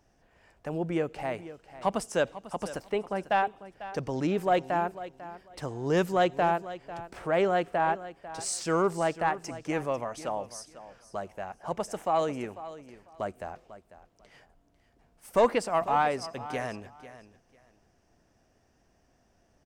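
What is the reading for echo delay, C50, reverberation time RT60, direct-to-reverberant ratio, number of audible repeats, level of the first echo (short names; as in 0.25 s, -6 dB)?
0.496 s, none, none, none, 2, -15.0 dB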